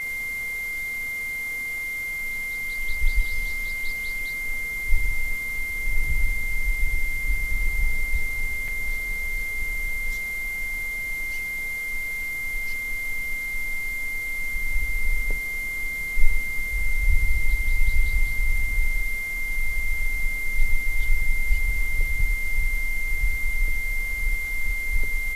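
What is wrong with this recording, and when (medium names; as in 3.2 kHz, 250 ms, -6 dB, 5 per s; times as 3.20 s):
whine 2.1 kHz -27 dBFS
8.68 s: dropout 3.8 ms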